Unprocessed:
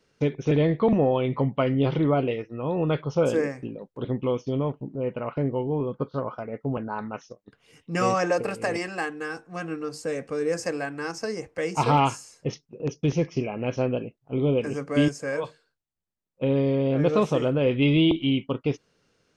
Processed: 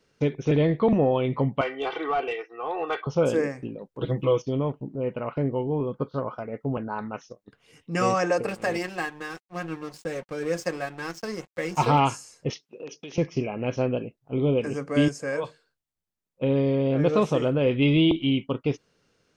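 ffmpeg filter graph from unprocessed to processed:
ffmpeg -i in.wav -filter_complex "[0:a]asettb=1/sr,asplit=3[link_01][link_02][link_03];[link_01]atrim=end=1.614[link_04];[link_02]atrim=start=1.61:end=3.07,asetpts=PTS-STARTPTS,afade=type=in:duration=0.004:curve=qsin,afade=type=out:start_time=1.456:duration=0.004:curve=qsin,highpass=730,aecho=1:1:2.6:0.95,atrim=end_sample=64386,asplit=2[link_05][link_06];[link_06]highpass=frequency=720:poles=1,volume=13dB,asoftclip=type=tanh:threshold=-15.5dB[link_07];[link_05][link_07]amix=inputs=2:normalize=0,lowpass=frequency=1400:poles=1,volume=-6dB[link_08];[link_03]atrim=start=3.066[link_09];[link_04][link_08]acrossfade=duration=0.004:curve1=hsin:curve2=qsin[link_10];[link_10][link_09]acrossfade=duration=0.004:curve1=qsin:curve2=hsin,asettb=1/sr,asplit=3[link_11][link_12][link_13];[link_11]atrim=end=4.004[link_14];[link_12]atrim=start=4:end=4.42,asetpts=PTS-STARTPTS,afade=type=in:duration=0.004:curve=qsin,afade=type=out:start_time=0.416:duration=0.004:curve=qsin,aemphasis=mode=production:type=cd,aecho=1:1:6.2:0.98,atrim=end_sample=18522[link_15];[link_13]atrim=start=4.416[link_16];[link_14][link_15]acrossfade=duration=0.004:curve1=hsin:curve2=qsin[link_17];[link_17][link_16]acrossfade=duration=0.004:curve1=qsin:curve2=hsin,asettb=1/sr,asplit=3[link_18][link_19][link_20];[link_18]atrim=end=8.484[link_21];[link_19]atrim=start=8.48:end=11.87,asetpts=PTS-STARTPTS,afade=type=in:duration=0.004:curve=qsin,afade=type=out:start_time=3.386:duration=0.004:curve=qsin,lowpass=8500,aeval=exprs='sgn(val(0))*max(abs(val(0))-0.00794,0)':channel_layout=same,aecho=1:1:5.5:0.44,atrim=end_sample=149499[link_22];[link_20]atrim=start=11.866[link_23];[link_21][link_22]acrossfade=duration=0.004:curve1=hsin:curve2=qsin[link_24];[link_24][link_23]acrossfade=duration=0.004:curve1=qsin:curve2=hsin,asettb=1/sr,asplit=3[link_25][link_26][link_27];[link_25]atrim=end=12.504[link_28];[link_26]atrim=start=12.5:end=13.18,asetpts=PTS-STARTPTS,afade=type=in:duration=0.004:curve=qsin,afade=type=out:start_time=0.676:duration=0.004:curve=qsin,equalizer=frequency=3100:width_type=o:width=1.7:gain=9,acompressor=threshold=-31dB:ratio=12:attack=3.2:release=140:knee=1:detection=peak,highpass=310[link_29];[link_27]atrim=start=13.176[link_30];[link_28][link_29]acrossfade=duration=0.004:curve1=hsin:curve2=qsin[link_31];[link_31][link_30]acrossfade=duration=0.004:curve1=qsin:curve2=hsin" out.wav

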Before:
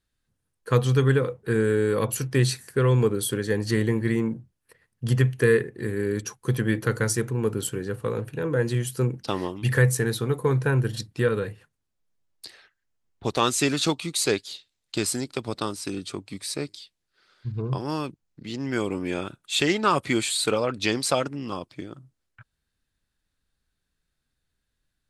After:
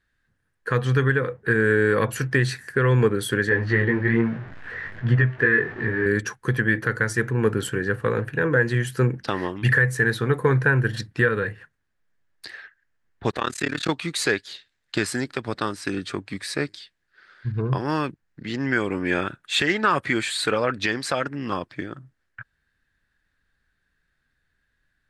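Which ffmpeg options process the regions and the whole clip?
ffmpeg -i in.wav -filter_complex "[0:a]asettb=1/sr,asplit=3[link_01][link_02][link_03];[link_01]atrim=end=3.494[link_04];[link_02]atrim=start=3.49:end=6.06,asetpts=PTS-STARTPTS,afade=type=in:duration=0.004:curve=qsin,afade=type=out:start_time=2.566:duration=0.004:curve=qsin,aeval=exprs='val(0)+0.5*0.0178*sgn(val(0))':channel_layout=same,lowpass=2900,flanger=delay=16.5:depth=4.5:speed=1.2[link_05];[link_03]atrim=start=6.056[link_06];[link_04][link_05]acrossfade=duration=0.004:curve1=hsin:curve2=qsin[link_07];[link_07][link_06]acrossfade=duration=0.004:curve1=qsin:curve2=hsin,asettb=1/sr,asplit=3[link_08][link_09][link_10];[link_08]atrim=end=13.314[link_11];[link_09]atrim=start=13.31:end=13.89,asetpts=PTS-STARTPTS,afade=type=in:duration=0.004:curve=qsin,afade=type=out:start_time=0.576:duration=0.004:curve=qsin,highpass=54,equalizer=frequency=5800:width=6.7:gain=-3.5,tremolo=f=36:d=0.974[link_12];[link_10]atrim=start=13.886[link_13];[link_11][link_12]acrossfade=duration=0.004:curve1=hsin:curve2=qsin[link_14];[link_14][link_13]acrossfade=duration=0.004:curve1=qsin:curve2=hsin,lowpass=frequency=3600:poles=1,equalizer=frequency=1700:width_type=o:width=0.61:gain=13.5,alimiter=limit=-12.5dB:level=0:latency=1:release=381,volume=4dB" out.wav

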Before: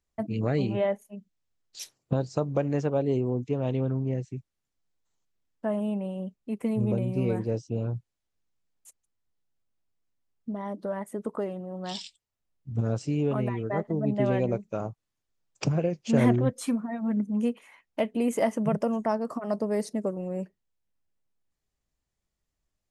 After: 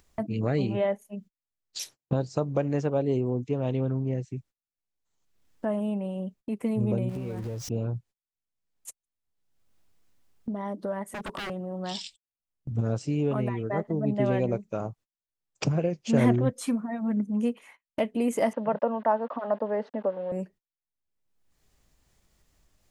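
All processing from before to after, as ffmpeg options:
ffmpeg -i in.wav -filter_complex "[0:a]asettb=1/sr,asplit=3[link_01][link_02][link_03];[link_01]atrim=end=7.094[link_04];[link_02]atrim=start=7.09:end=7.69,asetpts=PTS-STARTPTS,afade=type=in:duration=0.004:curve=qsin,afade=type=out:start_time=0.596:duration=0.004:curve=qsin,aeval=exprs='val(0)+0.5*0.0133*sgn(val(0))':channel_layout=same,asubboost=boost=11:cutoff=140,acompressor=threshold=-31dB:ratio=6:attack=3.2:release=140:knee=1:detection=peak[link_05];[link_03]atrim=start=7.686[link_06];[link_04][link_05]acrossfade=duration=0.004:curve1=hsin:curve2=qsin[link_07];[link_07][link_06]acrossfade=duration=0.004:curve1=qsin:curve2=hsin,asettb=1/sr,asplit=3[link_08][link_09][link_10];[link_08]atrim=end=11.054[link_11];[link_09]atrim=start=11.05:end=11.5,asetpts=PTS-STARTPTS,afade=type=in:duration=0.004:curve=qsin,afade=type=out:start_time=0.446:duration=0.004:curve=qsin,aecho=1:1:5.2:0.55,atrim=end_sample=19845,aeval=exprs='0.02*(abs(mod(val(0)/0.02+3,4)-2)-1)':channel_layout=same[link_12];[link_10]atrim=start=11.496[link_13];[link_11][link_12]acrossfade=duration=0.004:curve1=hsin:curve2=qsin[link_14];[link_14][link_13]acrossfade=duration=0.004:curve1=qsin:curve2=hsin,asettb=1/sr,asplit=3[link_15][link_16][link_17];[link_15]atrim=end=18.534[link_18];[link_16]atrim=start=18.53:end=20.32,asetpts=PTS-STARTPTS,afade=type=in:duration=0.004:curve=qsin,afade=type=out:start_time=1.786:duration=0.004:curve=qsin,aeval=exprs='val(0)*gte(abs(val(0)),0.00596)':channel_layout=same,highpass=frequency=240:width=0.5412,highpass=frequency=240:width=1.3066,equalizer=frequency=350:width_type=q:width=4:gain=-10,equalizer=frequency=550:width_type=q:width=4:gain=6,equalizer=frequency=900:width_type=q:width=4:gain=7,equalizer=frequency=1600:width_type=q:width=4:gain=4,equalizer=frequency=2300:width_type=q:width=4:gain=-8,lowpass=frequency=2900:width=0.5412,lowpass=frequency=2900:width=1.3066[link_19];[link_17]atrim=start=20.316[link_20];[link_18][link_19]acrossfade=duration=0.004:curve1=hsin:curve2=qsin[link_21];[link_21][link_20]acrossfade=duration=0.004:curve1=qsin:curve2=hsin,agate=range=-32dB:threshold=-50dB:ratio=16:detection=peak,acompressor=mode=upward:threshold=-29dB:ratio=2.5" out.wav

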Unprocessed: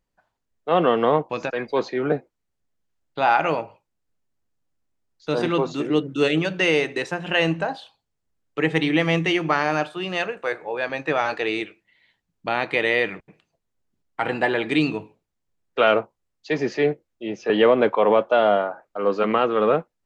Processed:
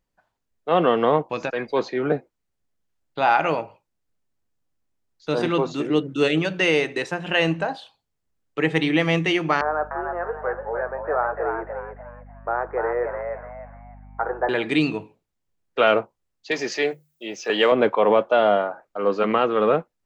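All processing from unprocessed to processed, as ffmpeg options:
ffmpeg -i in.wav -filter_complex "[0:a]asettb=1/sr,asplit=3[link_01][link_02][link_03];[link_01]atrim=end=9.614[link_04];[link_02]atrim=start=9.61:end=14.49,asetpts=PTS-STARTPTS,afade=type=in:duration=0.004:curve=qsin,afade=type=out:start_time=4.876:duration=0.004:curve=qsin,asuperpass=centerf=760:order=12:qfactor=0.63,asplit=5[link_05][link_06][link_07][link_08][link_09];[link_06]adelay=296,afreqshift=80,volume=-5.5dB[link_10];[link_07]adelay=592,afreqshift=160,volume=-15.4dB[link_11];[link_08]adelay=888,afreqshift=240,volume=-25.3dB[link_12];[link_09]adelay=1184,afreqshift=320,volume=-35.2dB[link_13];[link_05][link_10][link_11][link_12][link_13]amix=inputs=5:normalize=0,atrim=end_sample=215208,aeval=exprs='val(0)+0.00708*(sin(2*PI*50*n/s)+sin(2*PI*2*50*n/s)/2+sin(2*PI*3*50*n/s)/3+sin(2*PI*4*50*n/s)/4+sin(2*PI*5*50*n/s)/5)':channel_layout=same[link_14];[link_03]atrim=start=14.486[link_15];[link_04][link_14]acrossfade=duration=0.004:curve1=hsin:curve2=qsin[link_16];[link_16][link_15]acrossfade=duration=0.004:curve1=qsin:curve2=hsin,asettb=1/sr,asplit=3[link_17][link_18][link_19];[link_17]atrim=end=16.514[link_20];[link_18]atrim=start=16.51:end=17.72,asetpts=PTS-STARTPTS,afade=type=in:duration=0.004:curve=qsin,afade=type=out:start_time=1.206:duration=0.004:curve=qsin,aemphasis=mode=production:type=riaa,bandreject=frequency=50:width_type=h:width=6,bandreject=frequency=100:width_type=h:width=6,bandreject=frequency=150:width_type=h:width=6[link_21];[link_19]atrim=start=17.716[link_22];[link_20][link_21]acrossfade=duration=0.004:curve1=hsin:curve2=qsin[link_23];[link_23][link_22]acrossfade=duration=0.004:curve1=qsin:curve2=hsin" out.wav

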